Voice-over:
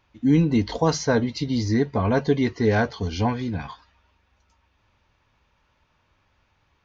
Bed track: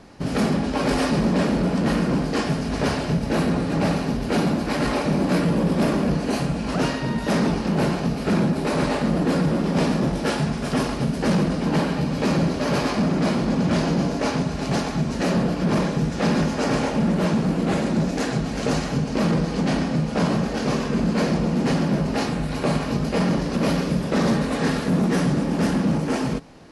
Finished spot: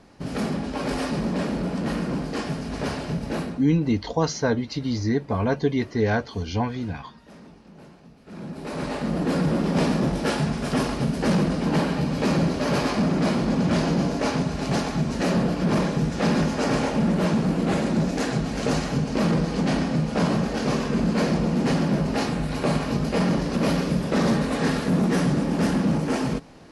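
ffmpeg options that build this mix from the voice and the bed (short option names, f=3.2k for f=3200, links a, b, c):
-filter_complex "[0:a]adelay=3350,volume=-2dB[a];[1:a]volume=19.5dB,afade=t=out:st=3.34:d=0.31:silence=0.0944061,afade=t=in:st=8.26:d=1.29:silence=0.0562341[b];[a][b]amix=inputs=2:normalize=0"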